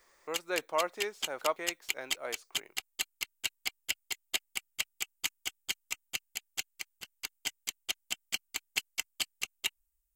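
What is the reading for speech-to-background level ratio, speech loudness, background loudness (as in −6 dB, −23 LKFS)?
0.0 dB, −37.0 LKFS, −37.0 LKFS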